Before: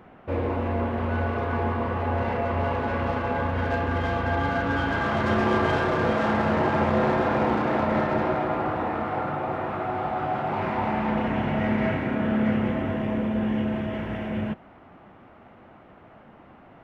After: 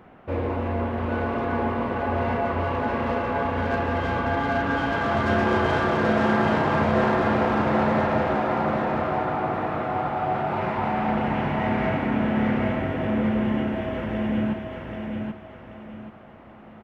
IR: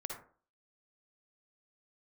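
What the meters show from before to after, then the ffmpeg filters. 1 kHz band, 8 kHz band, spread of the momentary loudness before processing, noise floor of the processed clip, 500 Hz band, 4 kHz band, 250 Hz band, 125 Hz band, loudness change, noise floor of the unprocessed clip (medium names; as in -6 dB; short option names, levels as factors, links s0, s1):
+2.0 dB, no reading, 6 LU, -46 dBFS, +1.5 dB, +1.5 dB, +1.5 dB, 0.0 dB, +1.0 dB, -51 dBFS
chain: -af "aecho=1:1:782|1564|2346|3128:0.631|0.208|0.0687|0.0227"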